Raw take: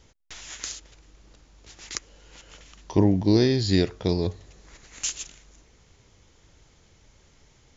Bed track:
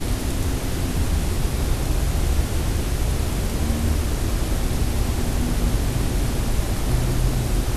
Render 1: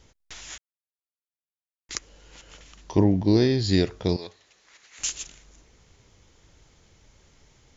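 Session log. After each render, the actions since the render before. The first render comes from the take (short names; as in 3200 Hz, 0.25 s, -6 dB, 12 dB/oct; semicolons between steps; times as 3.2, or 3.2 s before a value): 0.58–1.89 mute; 3.01–3.64 air absorption 59 m; 4.16–4.99 band-pass 2800 Hz, Q 0.57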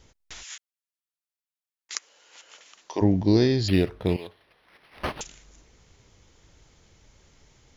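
0.42–3.01 HPF 1400 Hz -> 500 Hz; 3.68–5.21 decimation joined by straight lines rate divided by 6×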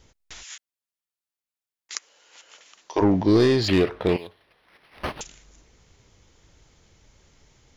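2.96–4.18 overdrive pedal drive 19 dB, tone 2000 Hz, clips at -8 dBFS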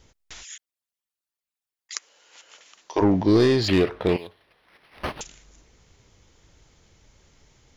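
0.45–1.96 formant sharpening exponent 2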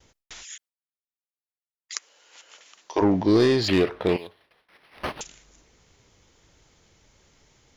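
gate with hold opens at -49 dBFS; low shelf 120 Hz -6.5 dB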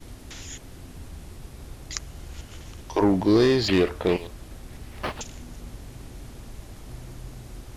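add bed track -19 dB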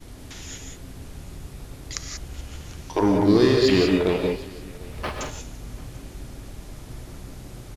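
echo 0.743 s -22.5 dB; non-linear reverb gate 0.21 s rising, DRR 2 dB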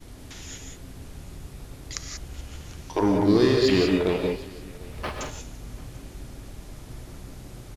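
gain -2 dB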